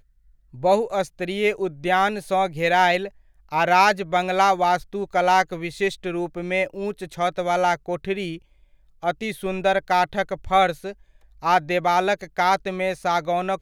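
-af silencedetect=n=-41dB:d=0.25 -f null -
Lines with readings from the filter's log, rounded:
silence_start: 0.00
silence_end: 0.54 | silence_duration: 0.54
silence_start: 3.09
silence_end: 3.49 | silence_duration: 0.40
silence_start: 8.38
silence_end: 9.03 | silence_duration: 0.65
silence_start: 10.93
silence_end: 11.42 | silence_duration: 0.49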